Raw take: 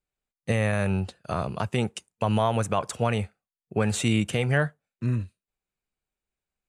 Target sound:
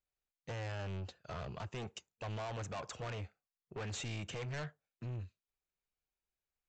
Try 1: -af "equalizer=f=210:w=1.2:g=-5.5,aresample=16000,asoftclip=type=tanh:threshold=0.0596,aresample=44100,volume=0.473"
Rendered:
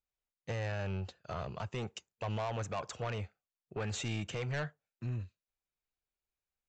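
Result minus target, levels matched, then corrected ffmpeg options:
saturation: distortion -4 dB
-af "equalizer=f=210:w=1.2:g=-5.5,aresample=16000,asoftclip=type=tanh:threshold=0.0251,aresample=44100,volume=0.473"

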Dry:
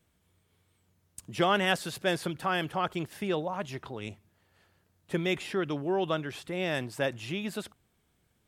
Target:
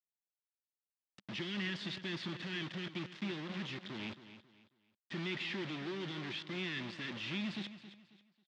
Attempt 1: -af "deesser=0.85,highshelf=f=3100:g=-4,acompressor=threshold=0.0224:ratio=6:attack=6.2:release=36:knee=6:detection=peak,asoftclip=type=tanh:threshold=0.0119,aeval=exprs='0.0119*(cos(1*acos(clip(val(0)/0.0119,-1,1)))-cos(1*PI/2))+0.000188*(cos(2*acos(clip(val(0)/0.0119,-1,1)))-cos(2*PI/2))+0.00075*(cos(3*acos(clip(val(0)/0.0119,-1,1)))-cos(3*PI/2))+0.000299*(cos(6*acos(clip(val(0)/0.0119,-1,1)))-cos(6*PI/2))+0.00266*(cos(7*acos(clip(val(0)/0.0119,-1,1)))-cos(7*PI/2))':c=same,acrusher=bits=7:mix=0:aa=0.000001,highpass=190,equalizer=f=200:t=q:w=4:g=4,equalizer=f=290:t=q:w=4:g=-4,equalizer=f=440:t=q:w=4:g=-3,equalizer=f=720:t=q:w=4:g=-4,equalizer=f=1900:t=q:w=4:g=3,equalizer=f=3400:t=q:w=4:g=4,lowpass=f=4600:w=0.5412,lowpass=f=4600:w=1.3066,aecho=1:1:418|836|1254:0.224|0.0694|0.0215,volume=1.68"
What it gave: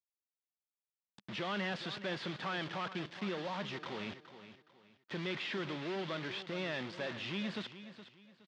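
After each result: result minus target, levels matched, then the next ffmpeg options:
echo 147 ms late; 1 kHz band +7.0 dB
-af "deesser=0.85,highshelf=f=3100:g=-4,acompressor=threshold=0.0224:ratio=6:attack=6.2:release=36:knee=6:detection=peak,asoftclip=type=tanh:threshold=0.0119,aeval=exprs='0.0119*(cos(1*acos(clip(val(0)/0.0119,-1,1)))-cos(1*PI/2))+0.000188*(cos(2*acos(clip(val(0)/0.0119,-1,1)))-cos(2*PI/2))+0.00075*(cos(3*acos(clip(val(0)/0.0119,-1,1)))-cos(3*PI/2))+0.000299*(cos(6*acos(clip(val(0)/0.0119,-1,1)))-cos(6*PI/2))+0.00266*(cos(7*acos(clip(val(0)/0.0119,-1,1)))-cos(7*PI/2))':c=same,acrusher=bits=7:mix=0:aa=0.000001,highpass=190,equalizer=f=200:t=q:w=4:g=4,equalizer=f=290:t=q:w=4:g=-4,equalizer=f=440:t=q:w=4:g=-3,equalizer=f=720:t=q:w=4:g=-4,equalizer=f=1900:t=q:w=4:g=3,equalizer=f=3400:t=q:w=4:g=4,lowpass=f=4600:w=0.5412,lowpass=f=4600:w=1.3066,aecho=1:1:271|542|813:0.224|0.0694|0.0215,volume=1.68"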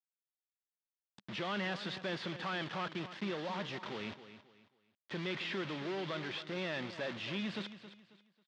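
1 kHz band +7.0 dB
-af "deesser=0.85,highshelf=f=3100:g=-4,acompressor=threshold=0.0224:ratio=6:attack=6.2:release=36:knee=6:detection=peak,asuperstop=centerf=800:order=12:qfactor=0.59,asoftclip=type=tanh:threshold=0.0119,aeval=exprs='0.0119*(cos(1*acos(clip(val(0)/0.0119,-1,1)))-cos(1*PI/2))+0.000188*(cos(2*acos(clip(val(0)/0.0119,-1,1)))-cos(2*PI/2))+0.00075*(cos(3*acos(clip(val(0)/0.0119,-1,1)))-cos(3*PI/2))+0.000299*(cos(6*acos(clip(val(0)/0.0119,-1,1)))-cos(6*PI/2))+0.00266*(cos(7*acos(clip(val(0)/0.0119,-1,1)))-cos(7*PI/2))':c=same,acrusher=bits=7:mix=0:aa=0.000001,highpass=190,equalizer=f=200:t=q:w=4:g=4,equalizer=f=290:t=q:w=4:g=-4,equalizer=f=440:t=q:w=4:g=-3,equalizer=f=720:t=q:w=4:g=-4,equalizer=f=1900:t=q:w=4:g=3,equalizer=f=3400:t=q:w=4:g=4,lowpass=f=4600:w=0.5412,lowpass=f=4600:w=1.3066,aecho=1:1:271|542|813:0.224|0.0694|0.0215,volume=1.68"

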